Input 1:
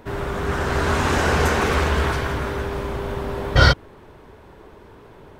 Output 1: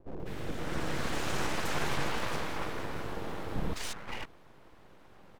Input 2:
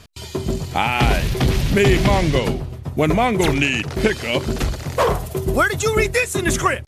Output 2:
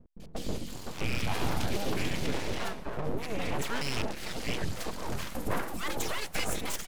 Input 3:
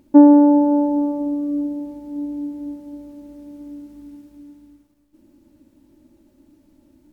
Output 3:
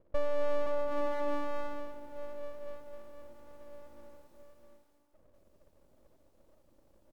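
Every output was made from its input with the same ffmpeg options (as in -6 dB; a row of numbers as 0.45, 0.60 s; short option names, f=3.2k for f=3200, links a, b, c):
-filter_complex "[0:a]alimiter=limit=-11dB:level=0:latency=1:release=33,acrossover=split=460|1500[a][b][c];[c]adelay=200[d];[b]adelay=520[e];[a][e][d]amix=inputs=3:normalize=0,aeval=exprs='abs(val(0))':c=same,volume=-8dB"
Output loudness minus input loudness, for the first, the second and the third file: -15.0, -15.5, -19.5 LU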